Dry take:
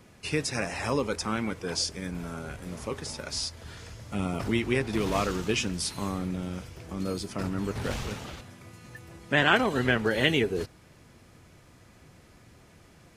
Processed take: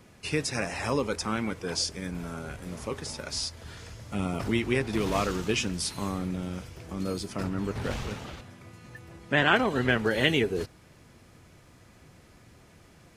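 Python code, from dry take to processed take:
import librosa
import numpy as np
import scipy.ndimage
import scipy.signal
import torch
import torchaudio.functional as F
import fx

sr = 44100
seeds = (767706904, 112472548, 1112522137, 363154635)

y = fx.high_shelf(x, sr, hz=5100.0, db=-5.5, at=(7.44, 9.89))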